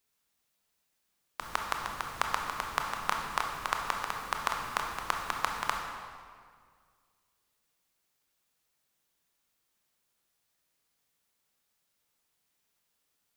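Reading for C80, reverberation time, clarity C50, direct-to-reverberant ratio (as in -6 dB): 4.5 dB, 1.9 s, 3.0 dB, 1.5 dB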